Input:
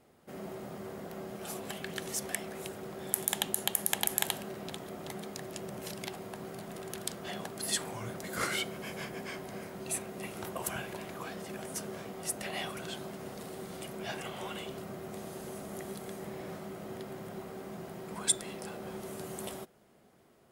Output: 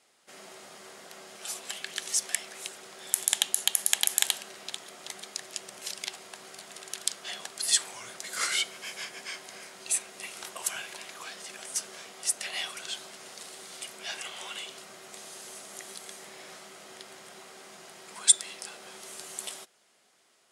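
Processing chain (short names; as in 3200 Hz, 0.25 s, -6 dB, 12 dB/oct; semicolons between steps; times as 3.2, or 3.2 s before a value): weighting filter ITU-R 468; gain -2 dB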